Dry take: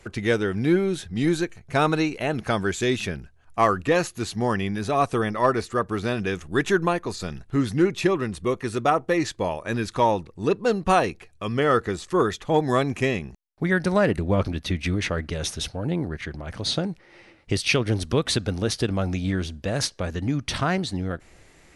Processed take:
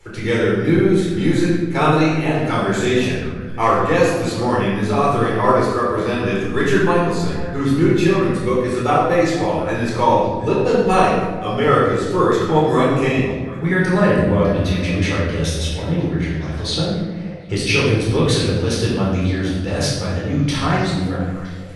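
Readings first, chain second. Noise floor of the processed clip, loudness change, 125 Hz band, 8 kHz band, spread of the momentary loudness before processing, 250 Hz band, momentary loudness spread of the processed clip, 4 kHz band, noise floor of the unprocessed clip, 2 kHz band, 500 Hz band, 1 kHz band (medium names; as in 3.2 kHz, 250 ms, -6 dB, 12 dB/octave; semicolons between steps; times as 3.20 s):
-27 dBFS, +6.5 dB, +8.0 dB, +3.5 dB, 8 LU, +7.0 dB, 7 LU, +4.5 dB, -54 dBFS, +5.5 dB, +7.0 dB, +6.5 dB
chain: on a send: repeats whose band climbs or falls 241 ms, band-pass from 230 Hz, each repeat 1.4 oct, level -9.5 dB; on the sum: simulated room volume 700 m³, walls mixed, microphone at 4.2 m; trim -3.5 dB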